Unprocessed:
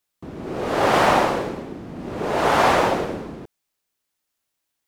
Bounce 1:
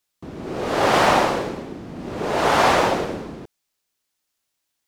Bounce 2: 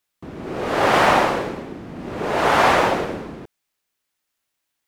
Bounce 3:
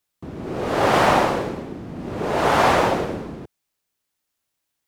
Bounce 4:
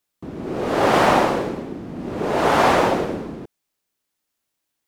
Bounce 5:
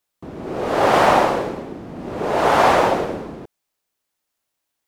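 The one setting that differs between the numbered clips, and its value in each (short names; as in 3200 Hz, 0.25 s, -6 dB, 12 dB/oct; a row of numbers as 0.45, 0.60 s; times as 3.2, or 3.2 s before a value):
bell, frequency: 5200, 2000, 98, 260, 670 Hz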